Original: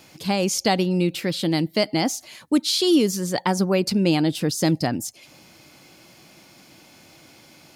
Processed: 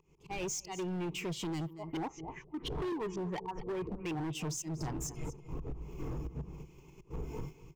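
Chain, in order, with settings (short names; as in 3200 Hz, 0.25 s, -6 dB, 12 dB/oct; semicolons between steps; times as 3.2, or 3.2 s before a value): wind noise 260 Hz -31 dBFS; auto swell 0.303 s; soft clip -20 dBFS, distortion -10 dB; 1.73–4.33 LFO low-pass saw up 4.2 Hz 410–3300 Hz; gate -38 dBFS, range -11 dB; spectral noise reduction 10 dB; ripple EQ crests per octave 0.73, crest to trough 15 dB; echo 0.235 s -20.5 dB; compressor 3:1, threshold -38 dBFS, peak gain reduction 19 dB; high shelf 4600 Hz -5.5 dB; hard clip -36 dBFS, distortion -10 dB; gain +2.5 dB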